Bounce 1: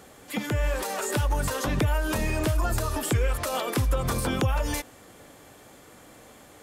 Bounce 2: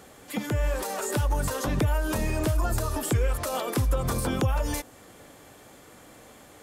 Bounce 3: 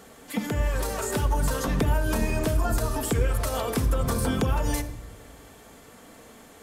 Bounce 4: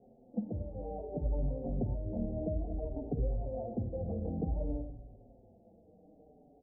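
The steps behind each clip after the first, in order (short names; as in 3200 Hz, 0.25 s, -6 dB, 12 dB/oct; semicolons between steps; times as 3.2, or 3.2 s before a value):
dynamic EQ 2500 Hz, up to -4 dB, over -44 dBFS, Q 0.71
shoebox room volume 4000 m³, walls furnished, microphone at 1.6 m
rippled Chebyshev low-pass 790 Hz, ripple 3 dB; endless flanger 5.2 ms -0.58 Hz; gain -5 dB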